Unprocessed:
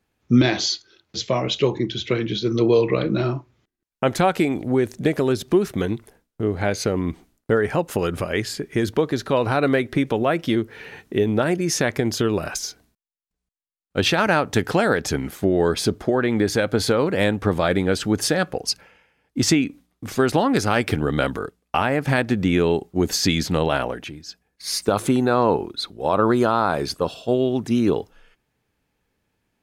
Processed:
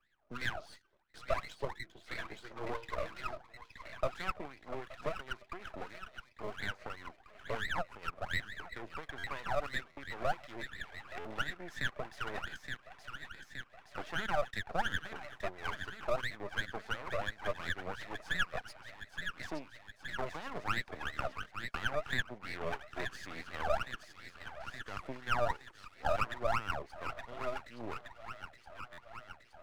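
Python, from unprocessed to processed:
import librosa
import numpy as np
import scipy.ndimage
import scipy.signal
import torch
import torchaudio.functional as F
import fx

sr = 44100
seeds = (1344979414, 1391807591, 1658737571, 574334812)

y = fx.wah_lfo(x, sr, hz=2.9, low_hz=600.0, high_hz=2000.0, q=19.0)
y = fx.echo_wet_highpass(y, sr, ms=870, feedback_pct=59, hz=1600.0, wet_db=-7.0)
y = np.maximum(y, 0.0)
y = fx.buffer_glitch(y, sr, at_s=(9.18, 9.91, 11.19, 28.92), block=512, repeats=4)
y = fx.band_squash(y, sr, depth_pct=40)
y = y * 10.0 ** (6.0 / 20.0)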